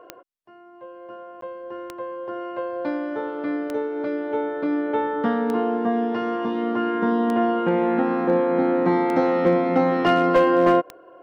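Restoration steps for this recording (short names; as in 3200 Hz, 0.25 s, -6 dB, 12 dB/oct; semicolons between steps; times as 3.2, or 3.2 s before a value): clip repair -10 dBFS; de-click; interpolate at 1.41, 13 ms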